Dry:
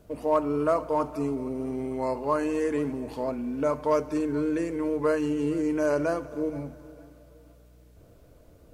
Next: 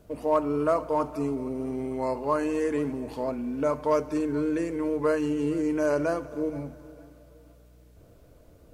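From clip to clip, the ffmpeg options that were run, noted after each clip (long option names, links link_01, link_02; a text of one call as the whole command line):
ffmpeg -i in.wav -af anull out.wav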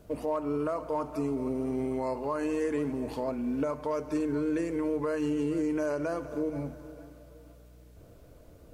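ffmpeg -i in.wav -af "alimiter=limit=-23dB:level=0:latency=1:release=221,volume=1dB" out.wav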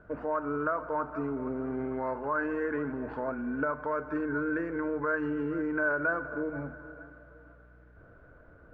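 ffmpeg -i in.wav -af "lowpass=frequency=1500:width_type=q:width=8.8,volume=-3dB" out.wav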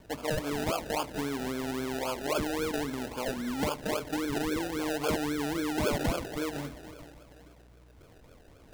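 ffmpeg -i in.wav -af "acrusher=samples=32:mix=1:aa=0.000001:lfo=1:lforange=19.2:lforate=3.7" out.wav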